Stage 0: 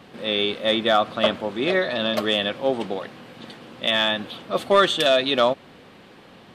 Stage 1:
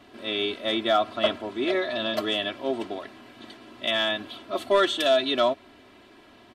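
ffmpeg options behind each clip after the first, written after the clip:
-af "aecho=1:1:3:0.89,volume=-6.5dB"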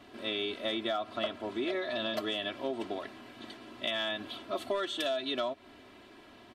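-af "acompressor=threshold=-28dB:ratio=6,volume=-2dB"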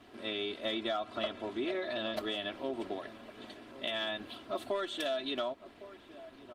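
-filter_complex "[0:a]asplit=2[a][b];[b]adelay=1108,volume=-15dB,highshelf=f=4k:g=-24.9[c];[a][c]amix=inputs=2:normalize=0,volume=-1.5dB" -ar 48000 -c:a libopus -b:a 20k

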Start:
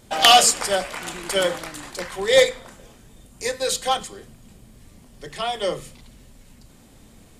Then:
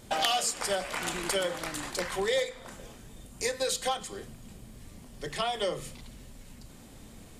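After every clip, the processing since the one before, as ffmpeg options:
-af "acompressor=threshold=-27dB:ratio=5"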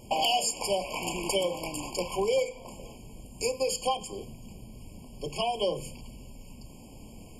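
-af "afftfilt=real='re*eq(mod(floor(b*sr/1024/1100),2),0)':imag='im*eq(mod(floor(b*sr/1024/1100),2),0)':win_size=1024:overlap=0.75,volume=2.5dB"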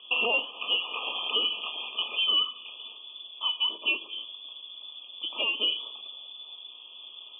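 -af "lowpass=f=3k:t=q:w=0.5098,lowpass=f=3k:t=q:w=0.6013,lowpass=f=3k:t=q:w=0.9,lowpass=f=3k:t=q:w=2.563,afreqshift=-3500,volume=1dB"

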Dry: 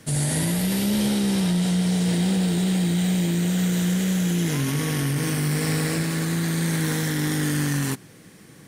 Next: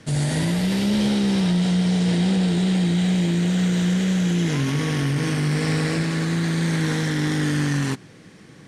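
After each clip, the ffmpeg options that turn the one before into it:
-af "lowpass=5.8k,volume=2dB"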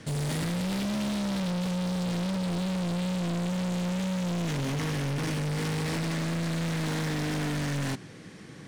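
-af "volume=28.5dB,asoftclip=hard,volume=-28.5dB"

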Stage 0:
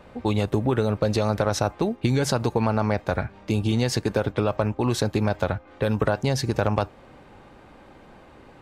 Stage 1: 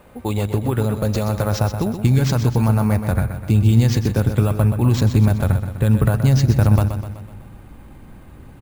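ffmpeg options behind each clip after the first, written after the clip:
-af "aecho=1:1:126|252|378|504|630|756:0.355|0.192|0.103|0.0559|0.0302|0.0163,acrusher=samples=4:mix=1:aa=0.000001,asubboost=boost=5:cutoff=210"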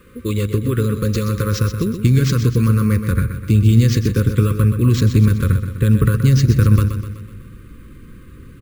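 -af "asuperstop=centerf=750:order=12:qfactor=1.4,volume=2dB"

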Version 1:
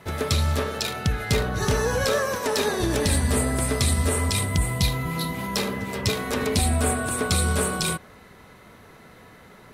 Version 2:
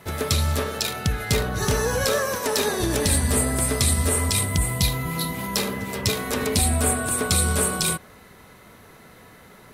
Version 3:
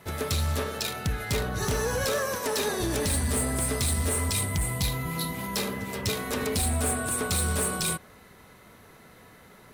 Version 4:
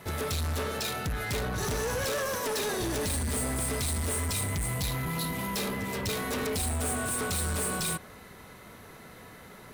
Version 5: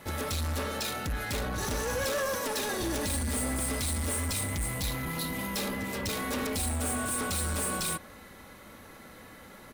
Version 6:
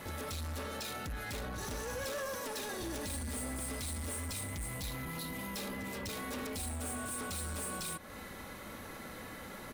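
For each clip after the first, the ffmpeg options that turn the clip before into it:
-af "highshelf=f=7.7k:g=8.5"
-af "asoftclip=type=hard:threshold=-18dB,volume=-4dB"
-af "asoftclip=type=tanh:threshold=-31.5dB,volume=3.5dB"
-af "aecho=1:1:3.6:0.39,volume=-1dB"
-af "alimiter=level_in=13.5dB:limit=-24dB:level=0:latency=1:release=214,volume=-13.5dB,volume=3dB"

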